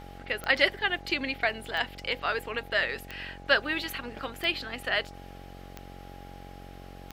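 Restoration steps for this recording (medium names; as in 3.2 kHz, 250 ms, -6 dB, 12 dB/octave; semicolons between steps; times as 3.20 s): de-click; de-hum 45.6 Hz, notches 18; band-stop 820 Hz, Q 30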